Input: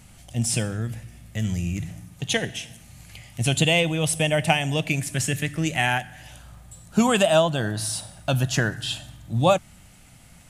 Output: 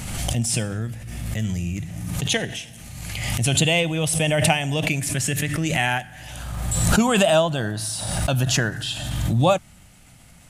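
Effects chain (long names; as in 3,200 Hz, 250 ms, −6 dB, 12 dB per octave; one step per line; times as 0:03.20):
background raised ahead of every attack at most 32 dB per second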